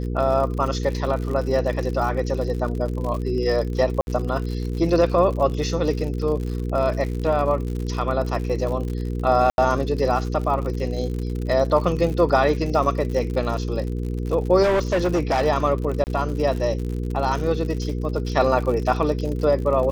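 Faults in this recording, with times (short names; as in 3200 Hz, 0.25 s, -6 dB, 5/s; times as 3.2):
crackle 77/s -29 dBFS
hum 60 Hz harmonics 8 -26 dBFS
4.01–4.07 gap 61 ms
9.5–9.58 gap 81 ms
14.62–15.47 clipped -16 dBFS
16.04–16.07 gap 29 ms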